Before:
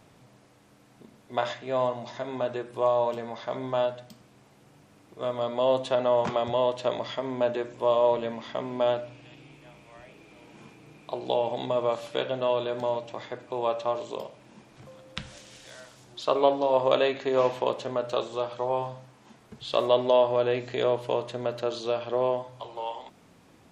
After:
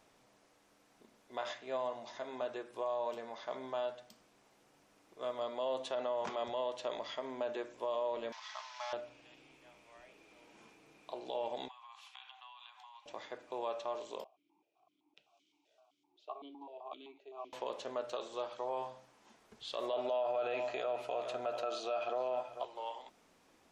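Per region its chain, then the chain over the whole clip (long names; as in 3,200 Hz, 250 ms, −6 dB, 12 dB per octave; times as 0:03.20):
0:08.32–0:08.93: linear delta modulator 32 kbit/s, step −36 dBFS + Butterworth high-pass 850 Hz + comb filter 4.7 ms, depth 52%
0:11.68–0:13.06: downward compressor 10 to 1, threshold −30 dBFS + Chebyshev high-pass with heavy ripple 740 Hz, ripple 9 dB
0:14.24–0:17.53: phaser with its sweep stopped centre 350 Hz, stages 8 + formant filter that steps through the vowels 7.8 Hz
0:19.93–0:22.65: double-tracking delay 15 ms −13.5 dB + hollow resonant body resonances 700/1,300/2,500 Hz, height 15 dB, ringing for 35 ms + single-tap delay 439 ms −15.5 dB
whole clip: parametric band 120 Hz −15 dB 1.7 octaves; brickwall limiter −20 dBFS; parametric band 5,800 Hz +3 dB 0.37 octaves; level −7.5 dB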